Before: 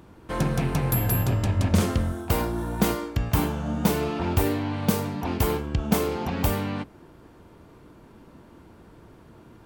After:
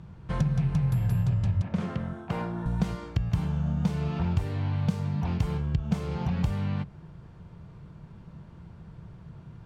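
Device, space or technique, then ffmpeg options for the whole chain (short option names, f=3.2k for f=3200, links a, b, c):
jukebox: -filter_complex "[0:a]asettb=1/sr,asplit=3[a][b][c];[a]atrim=end=1.624[d];[b]atrim=start=1.62:end=2.66,asetpts=PTS-STARTPTS,afade=t=in:d=0.004:c=qsin,afade=t=out:st=1.036:d=0.004:c=qsin,acrossover=split=170 2900:gain=0.0794 1 0.251[e][f][g];[e][f][g]amix=inputs=3:normalize=0[h];[c]atrim=start=2.656[i];[d][h]acrossfade=d=0.004:c1=hsin:c2=qsin[j];[j][i]acrossfade=d=0.004:c1=qsin:c2=hsin,lowpass=6.3k,lowshelf=f=210:t=q:w=3:g=8.5,acompressor=threshold=-21dB:ratio=3,volume=-4dB"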